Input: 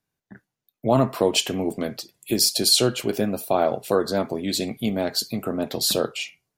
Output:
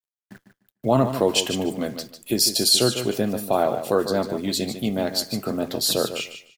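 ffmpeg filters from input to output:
-af "bandreject=f=2300:w=15,acrusher=bits=9:dc=4:mix=0:aa=0.000001,aecho=1:1:149|298|447:0.316|0.0601|0.0114"

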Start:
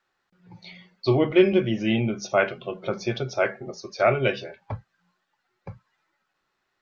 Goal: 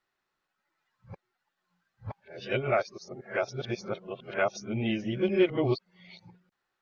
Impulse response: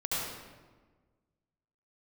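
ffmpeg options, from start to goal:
-af "areverse,volume=0.473"

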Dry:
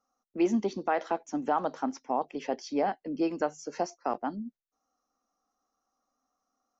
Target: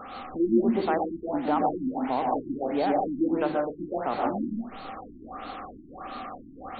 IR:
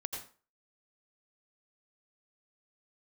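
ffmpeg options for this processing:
-filter_complex "[0:a]aeval=exprs='val(0)+0.5*0.0211*sgn(val(0))':c=same[s0];[1:a]atrim=start_sample=2205,asetrate=30870,aresample=44100[s1];[s0][s1]afir=irnorm=-1:irlink=0,afftfilt=real='re*lt(b*sr/1024,350*pow(4600/350,0.5+0.5*sin(2*PI*1.5*pts/sr)))':imag='im*lt(b*sr/1024,350*pow(4600/350,0.5+0.5*sin(2*PI*1.5*pts/sr)))':win_size=1024:overlap=0.75"

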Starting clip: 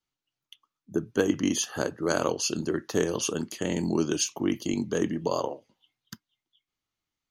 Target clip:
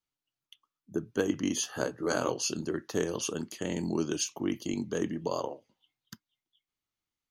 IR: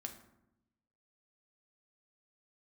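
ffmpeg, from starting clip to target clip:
-filter_complex "[0:a]asettb=1/sr,asplit=3[s0][s1][s2];[s0]atrim=end=1.554[s3];[s1]atrim=start=1.55:end=2.53,asetpts=PTS-STARTPTS,afade=t=in:d=0.004:c=qsin,afade=t=out:st=0.976:d=0.004:c=qsin,asplit=2[s4][s5];[s5]adelay=16,volume=0.562[s6];[s4][s6]amix=inputs=2:normalize=0,atrim=end_sample=43218[s7];[s2]atrim=start=2.526[s8];[s3][s7]acrossfade=d=0.004:c1=hsin:c2=qsin[s9];[s9][s8]acrossfade=d=0.004:c1=qsin:c2=hsin,volume=0.596"

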